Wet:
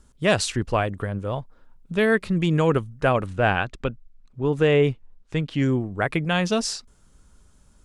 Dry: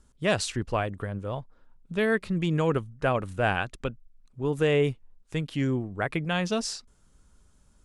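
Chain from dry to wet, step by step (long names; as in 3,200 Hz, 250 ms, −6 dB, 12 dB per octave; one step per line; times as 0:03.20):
0:03.26–0:05.62: high-frequency loss of the air 78 metres
level +5 dB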